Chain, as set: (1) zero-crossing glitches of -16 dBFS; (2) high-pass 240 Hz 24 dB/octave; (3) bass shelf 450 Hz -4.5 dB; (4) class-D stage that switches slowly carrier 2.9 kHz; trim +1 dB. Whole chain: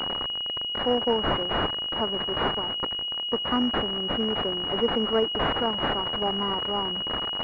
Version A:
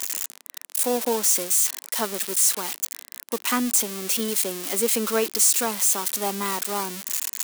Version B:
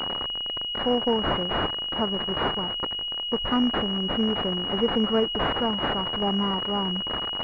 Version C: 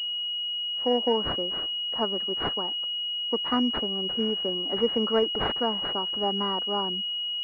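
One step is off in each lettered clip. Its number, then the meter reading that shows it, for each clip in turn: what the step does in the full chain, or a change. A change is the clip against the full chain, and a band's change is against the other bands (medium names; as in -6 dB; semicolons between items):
4, 4 kHz band -8.0 dB; 2, 250 Hz band +3.5 dB; 1, distortion -2 dB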